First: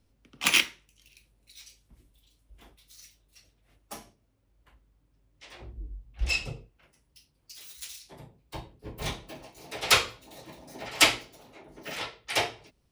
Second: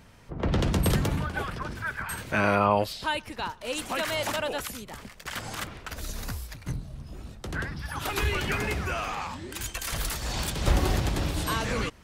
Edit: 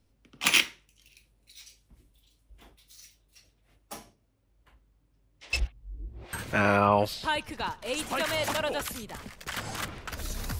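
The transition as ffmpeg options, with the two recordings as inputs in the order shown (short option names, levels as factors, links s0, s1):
-filter_complex "[0:a]apad=whole_dur=10.59,atrim=end=10.59,asplit=2[s0][s1];[s0]atrim=end=5.532[s2];[s1]atrim=start=5.528:end=6.332,asetpts=PTS-STARTPTS,areverse[s3];[1:a]atrim=start=2.118:end=6.38[s4];[s2][s3]acrossfade=d=0.004:c1=hsin:c2=hsin[s5];[s5][s4]acrossfade=d=0.004:c1=hsin:c2=hsin"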